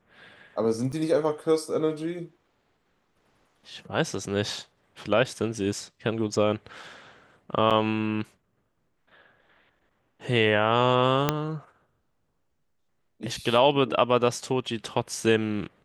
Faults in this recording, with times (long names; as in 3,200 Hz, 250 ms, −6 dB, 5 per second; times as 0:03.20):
0:00.92–0:00.93: drop-out 6.2 ms
0:07.70–0:07.71: drop-out 6.9 ms
0:11.29: click −6 dBFS